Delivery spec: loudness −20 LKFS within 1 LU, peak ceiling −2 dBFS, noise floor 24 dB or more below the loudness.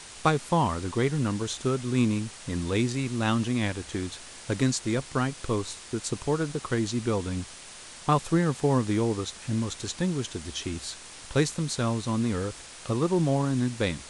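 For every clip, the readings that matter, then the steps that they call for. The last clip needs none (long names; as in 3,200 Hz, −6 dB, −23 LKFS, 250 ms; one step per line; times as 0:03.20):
background noise floor −45 dBFS; target noise floor −52 dBFS; integrated loudness −28.0 LKFS; sample peak −9.5 dBFS; target loudness −20.0 LKFS
→ broadband denoise 7 dB, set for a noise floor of −45 dBFS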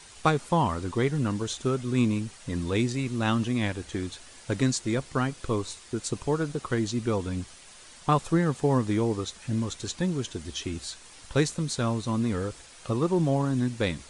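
background noise floor −50 dBFS; target noise floor −53 dBFS
→ broadband denoise 6 dB, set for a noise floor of −50 dBFS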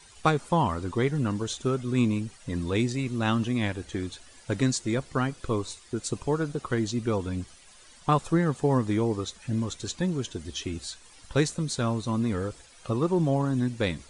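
background noise floor −53 dBFS; integrated loudness −28.5 LKFS; sample peak −9.5 dBFS; target loudness −20.0 LKFS
→ level +8.5 dB
brickwall limiter −2 dBFS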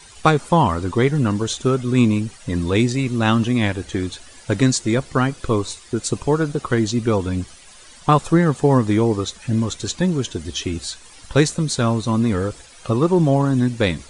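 integrated loudness −20.0 LKFS; sample peak −2.0 dBFS; background noise floor −45 dBFS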